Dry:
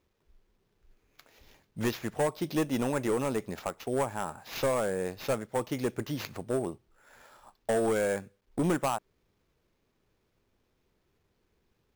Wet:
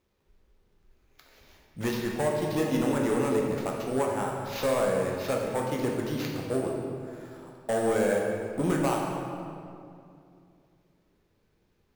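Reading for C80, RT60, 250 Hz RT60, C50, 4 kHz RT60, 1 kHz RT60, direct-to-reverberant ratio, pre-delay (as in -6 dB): 3.0 dB, 2.5 s, 3.0 s, 1.5 dB, 1.6 s, 2.3 s, -1.0 dB, 12 ms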